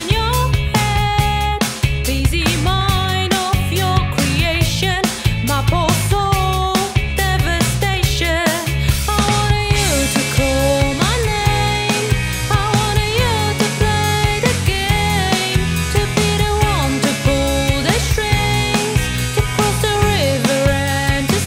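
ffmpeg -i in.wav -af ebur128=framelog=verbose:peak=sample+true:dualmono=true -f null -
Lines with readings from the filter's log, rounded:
Integrated loudness:
  I:         -13.0 LUFS
  Threshold: -23.0 LUFS
Loudness range:
  LRA:         0.8 LU
  Threshold: -33.0 LUFS
  LRA low:   -13.3 LUFS
  LRA high:  -12.5 LUFS
Sample peak:
  Peak:       -3.2 dBFS
True peak:
  Peak:       -3.1 dBFS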